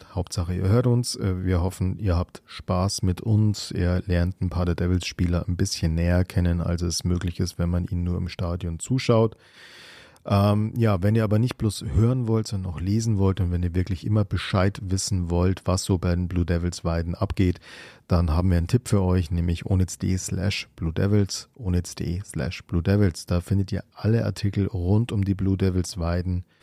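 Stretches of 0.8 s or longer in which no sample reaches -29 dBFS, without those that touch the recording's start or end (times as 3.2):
9.32–10.28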